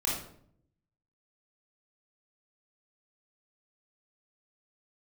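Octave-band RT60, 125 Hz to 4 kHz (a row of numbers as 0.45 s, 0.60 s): 1.1 s, 0.90 s, 0.70 s, 0.55 s, 0.50 s, 0.45 s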